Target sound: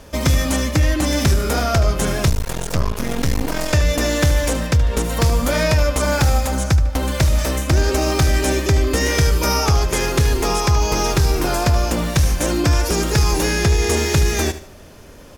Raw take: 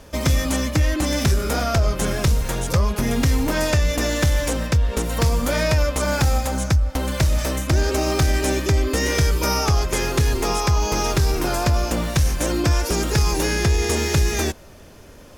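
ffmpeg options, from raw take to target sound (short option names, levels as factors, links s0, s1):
-filter_complex "[0:a]aecho=1:1:75|150|225:0.211|0.0719|0.0244,asettb=1/sr,asplit=3[s0][s1][s2];[s0]atrim=end=2.294[s3];[s1]atrim=start=2.29:end=3.73,asetpts=PTS-STARTPTS,afade=t=in:d=0.004:c=qsin,afade=t=out:st=1.436:d=0.004:c=qsin,aeval=exprs='max(val(0),0)':c=same[s4];[s2]atrim=start=3.726[s5];[s3][s4]acrossfade=d=0.004:c1=hsin:c2=qsin[s6];[s6][s5]acrossfade=d=0.004:c1=qsin:c2=hsin,volume=1.33"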